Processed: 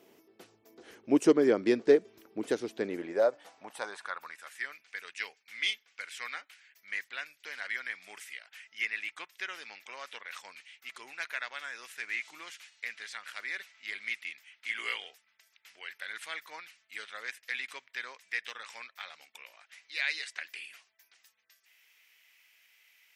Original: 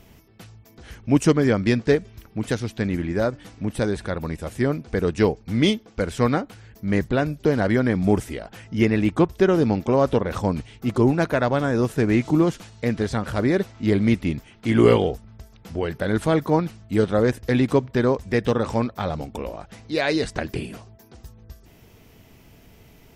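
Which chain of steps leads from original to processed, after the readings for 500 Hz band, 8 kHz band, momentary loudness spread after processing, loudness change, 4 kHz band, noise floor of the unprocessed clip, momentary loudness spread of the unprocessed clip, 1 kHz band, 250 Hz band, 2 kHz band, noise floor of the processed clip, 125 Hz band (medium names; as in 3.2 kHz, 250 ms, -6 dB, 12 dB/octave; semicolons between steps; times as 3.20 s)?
-11.5 dB, -8.5 dB, 19 LU, -12.0 dB, -6.0 dB, -52 dBFS, 12 LU, -15.5 dB, -15.5 dB, -4.5 dB, -72 dBFS, under -30 dB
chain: high-pass sweep 360 Hz -> 2.1 kHz, 2.76–4.75 s; trim -9 dB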